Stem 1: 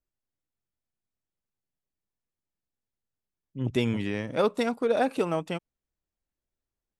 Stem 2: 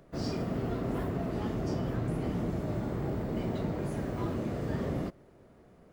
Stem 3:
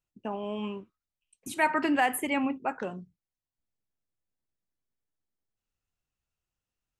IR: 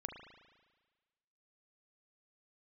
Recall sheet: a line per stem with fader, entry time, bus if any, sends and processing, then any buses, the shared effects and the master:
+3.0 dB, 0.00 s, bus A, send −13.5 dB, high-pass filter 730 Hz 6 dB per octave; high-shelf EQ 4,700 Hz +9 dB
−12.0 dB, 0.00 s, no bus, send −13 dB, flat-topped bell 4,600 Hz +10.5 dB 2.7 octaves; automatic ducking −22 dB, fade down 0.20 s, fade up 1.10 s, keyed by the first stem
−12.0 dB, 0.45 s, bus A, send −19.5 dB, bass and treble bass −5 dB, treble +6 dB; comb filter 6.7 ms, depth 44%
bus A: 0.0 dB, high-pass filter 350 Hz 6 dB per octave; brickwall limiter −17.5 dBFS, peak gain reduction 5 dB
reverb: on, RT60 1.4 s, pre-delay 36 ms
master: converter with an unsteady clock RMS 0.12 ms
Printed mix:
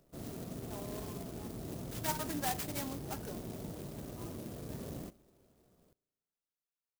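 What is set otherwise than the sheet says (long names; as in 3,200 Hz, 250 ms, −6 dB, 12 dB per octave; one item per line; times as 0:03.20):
stem 1: muted
stem 2: missing flat-topped bell 4,600 Hz +10.5 dB 2.7 octaves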